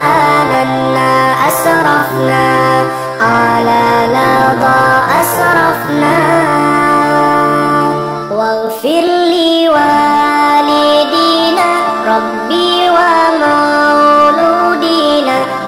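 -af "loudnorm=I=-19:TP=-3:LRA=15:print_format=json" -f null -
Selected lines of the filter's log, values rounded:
"input_i" : "-9.6",
"input_tp" : "-1.2",
"input_lra" : "1.0",
"input_thresh" : "-19.6",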